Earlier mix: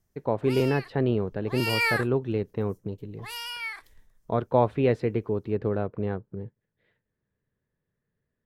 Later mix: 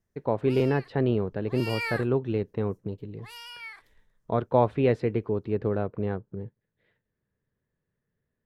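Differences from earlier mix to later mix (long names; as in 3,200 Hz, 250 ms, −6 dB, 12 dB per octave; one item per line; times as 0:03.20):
background −7.0 dB
master: add high-shelf EQ 11,000 Hz −7.5 dB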